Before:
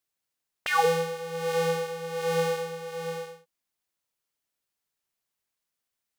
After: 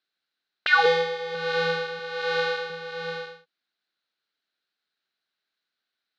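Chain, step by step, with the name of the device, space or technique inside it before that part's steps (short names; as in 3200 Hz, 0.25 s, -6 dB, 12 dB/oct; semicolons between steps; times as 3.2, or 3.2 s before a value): 0.85–1.35 comb 2.3 ms, depth 71%; 1.99–2.7 tone controls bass -10 dB, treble 0 dB; kitchen radio (speaker cabinet 220–4500 Hz, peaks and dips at 530 Hz -4 dB, 970 Hz -7 dB, 1500 Hz +9 dB, 4000 Hz +10 dB); gain +3 dB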